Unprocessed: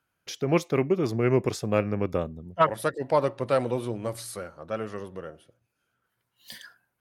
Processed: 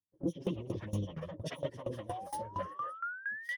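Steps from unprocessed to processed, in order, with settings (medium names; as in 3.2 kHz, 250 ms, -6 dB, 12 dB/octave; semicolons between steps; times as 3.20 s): self-modulated delay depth 0.27 ms; rippled EQ curve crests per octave 1.2, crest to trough 10 dB; three bands offset in time lows, highs, mids 280/390 ms, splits 540/3800 Hz; touch-sensitive flanger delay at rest 10 ms, full sweep at -23 dBFS; high-pass 85 Hz 12 dB/octave; gate with hold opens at -58 dBFS; plain phase-vocoder stretch 0.51×; painted sound rise, 2.08–3.69 s, 700–2200 Hz -39 dBFS; compression 6:1, threshold -37 dBFS, peak gain reduction 14 dB; bass shelf 170 Hz +8 dB; sawtooth tremolo in dB decaying 4.3 Hz, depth 19 dB; trim +6.5 dB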